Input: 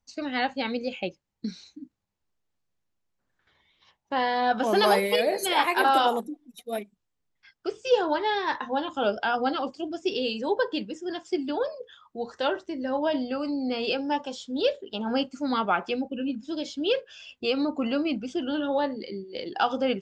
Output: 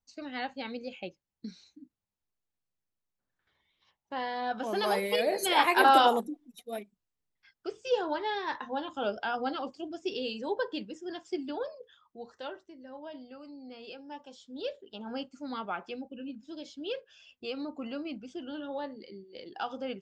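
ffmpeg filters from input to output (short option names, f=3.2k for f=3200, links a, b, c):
-af "volume=8dB,afade=t=in:st=4.83:d=1.09:silence=0.316228,afade=t=out:st=5.92:d=0.83:silence=0.421697,afade=t=out:st=11.38:d=1.39:silence=0.266073,afade=t=in:st=14.04:d=0.73:silence=0.446684"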